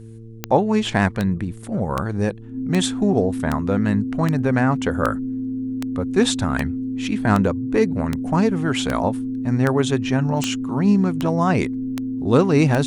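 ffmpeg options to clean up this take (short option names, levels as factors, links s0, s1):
-af "adeclick=t=4,bandreject=f=112.8:t=h:w=4,bandreject=f=225.6:t=h:w=4,bandreject=f=338.4:t=h:w=4,bandreject=f=451.2:t=h:w=4,bandreject=f=260:w=30"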